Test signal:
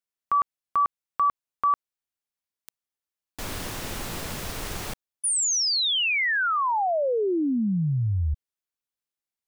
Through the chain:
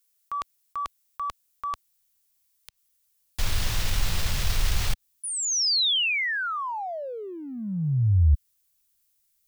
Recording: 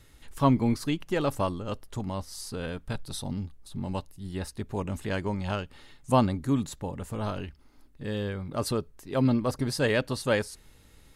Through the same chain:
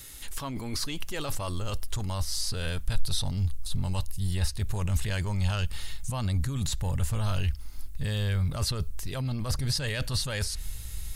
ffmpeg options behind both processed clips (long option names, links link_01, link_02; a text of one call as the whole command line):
ffmpeg -i in.wav -filter_complex "[0:a]areverse,acompressor=threshold=-34dB:ratio=10:attack=1.5:release=31:knee=6:detection=rms,areverse,crystalizer=i=5.5:c=0,asubboost=boost=11:cutoff=90,acrossover=split=5200[link_01][link_02];[link_02]acompressor=threshold=-42dB:ratio=4:attack=1:release=60[link_03];[link_01][link_03]amix=inputs=2:normalize=0,volume=3dB" out.wav